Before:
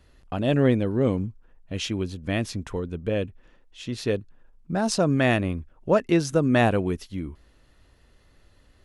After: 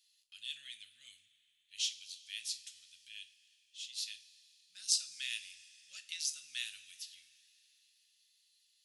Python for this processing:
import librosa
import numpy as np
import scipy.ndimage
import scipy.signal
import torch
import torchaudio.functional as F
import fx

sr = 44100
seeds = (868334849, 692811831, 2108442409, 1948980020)

y = scipy.signal.sosfilt(scipy.signal.cheby2(4, 60, 1000.0, 'highpass', fs=sr, output='sos'), x)
y = fx.rev_double_slope(y, sr, seeds[0], early_s=0.32, late_s=3.5, knee_db=-18, drr_db=7.0)
y = F.gain(torch.from_numpy(y), -1.0).numpy()